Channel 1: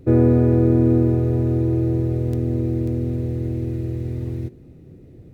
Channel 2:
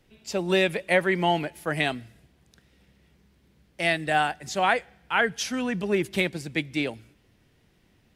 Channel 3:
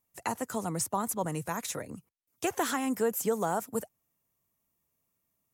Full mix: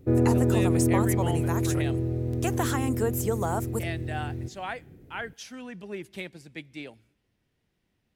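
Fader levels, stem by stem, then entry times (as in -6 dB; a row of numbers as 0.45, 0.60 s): -7.0, -12.5, +0.5 dB; 0.00, 0.00, 0.00 s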